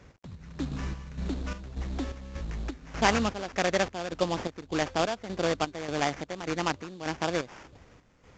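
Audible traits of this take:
a quantiser's noise floor 12 bits, dither none
chopped level 1.7 Hz, depth 65%, duty 60%
aliases and images of a low sample rate 4,000 Hz, jitter 20%
mu-law

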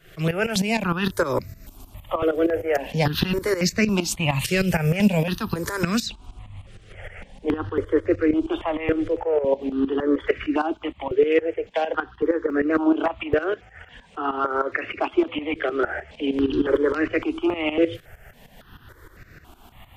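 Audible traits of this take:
tremolo saw up 6.5 Hz, depth 80%
notches that jump at a steady rate 3.6 Hz 240–3,200 Hz

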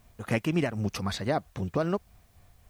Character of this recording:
tremolo triangle 3.8 Hz, depth 50%
a quantiser's noise floor 12 bits, dither triangular

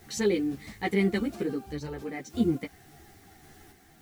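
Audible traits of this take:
a quantiser's noise floor 10 bits, dither triangular
sample-and-hold tremolo
a shimmering, thickened sound

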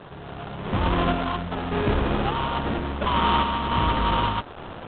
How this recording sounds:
a quantiser's noise floor 6 bits, dither triangular
sample-and-hold tremolo
aliases and images of a low sample rate 2,100 Hz, jitter 20%
IMA ADPCM

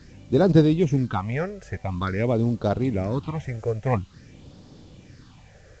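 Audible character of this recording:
phaser sweep stages 6, 0.48 Hz, lowest notch 250–2,200 Hz
a quantiser's noise floor 10 bits, dither triangular
A-law companding

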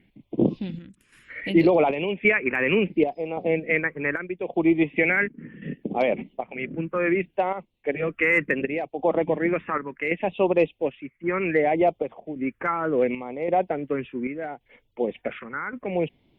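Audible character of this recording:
chopped level 0.89 Hz, depth 60%, duty 70%
phaser sweep stages 4, 0.69 Hz, lowest notch 690–1,600 Hz
Opus

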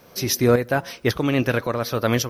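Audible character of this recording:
tremolo saw up 1.8 Hz, depth 60%
a quantiser's noise floor 12 bits, dither triangular

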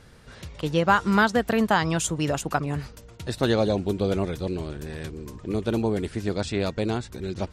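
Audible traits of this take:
background noise floor −47 dBFS
spectral slope −5.5 dB per octave

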